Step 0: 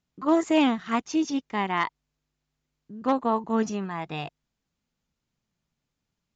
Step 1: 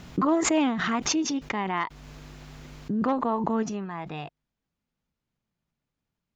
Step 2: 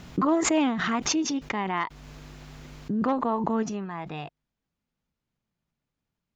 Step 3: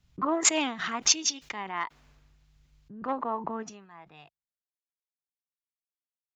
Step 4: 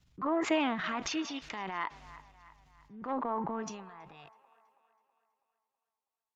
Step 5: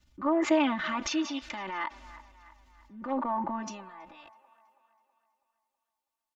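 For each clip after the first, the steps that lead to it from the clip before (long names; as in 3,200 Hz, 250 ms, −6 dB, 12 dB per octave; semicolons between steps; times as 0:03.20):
high-shelf EQ 4,900 Hz −11 dB; background raised ahead of every attack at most 21 dB per second; level −2.5 dB
no processing that can be heard
low-shelf EQ 480 Hz −11 dB; multiband upward and downward expander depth 100%; level −2.5 dB
transient designer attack −6 dB, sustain +7 dB; delay with a band-pass on its return 325 ms, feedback 50%, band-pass 1,200 Hz, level −16 dB; treble cut that deepens with the level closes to 2,500 Hz, closed at −25 dBFS; level −2 dB
comb filter 3.4 ms, depth 93%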